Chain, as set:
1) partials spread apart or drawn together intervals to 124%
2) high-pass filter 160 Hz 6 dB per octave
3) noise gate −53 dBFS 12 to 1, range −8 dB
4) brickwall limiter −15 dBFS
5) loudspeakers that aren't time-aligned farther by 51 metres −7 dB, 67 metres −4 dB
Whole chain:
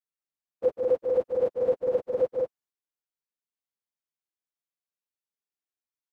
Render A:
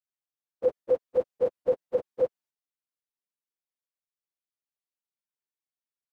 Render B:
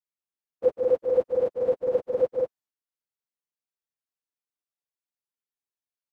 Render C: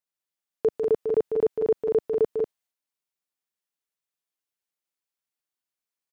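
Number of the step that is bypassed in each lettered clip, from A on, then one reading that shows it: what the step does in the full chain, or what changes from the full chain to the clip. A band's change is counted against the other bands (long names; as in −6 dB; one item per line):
5, echo-to-direct ratio −2.0 dB to none audible
4, change in crest factor +2.0 dB
1, 250 Hz band +4.0 dB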